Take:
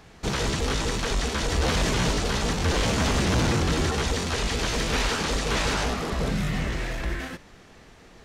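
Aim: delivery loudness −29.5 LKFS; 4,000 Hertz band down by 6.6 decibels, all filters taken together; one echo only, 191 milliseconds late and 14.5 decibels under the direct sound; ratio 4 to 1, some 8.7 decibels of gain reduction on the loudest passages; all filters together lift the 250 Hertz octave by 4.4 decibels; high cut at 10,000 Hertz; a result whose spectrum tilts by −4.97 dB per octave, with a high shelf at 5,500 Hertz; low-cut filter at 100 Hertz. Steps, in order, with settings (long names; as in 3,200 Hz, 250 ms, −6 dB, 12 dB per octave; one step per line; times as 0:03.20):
high-pass filter 100 Hz
low-pass filter 10,000 Hz
parametric band 250 Hz +6 dB
parametric band 4,000 Hz −6 dB
high-shelf EQ 5,500 Hz −6.5 dB
downward compressor 4 to 1, threshold −29 dBFS
single-tap delay 191 ms −14.5 dB
level +2.5 dB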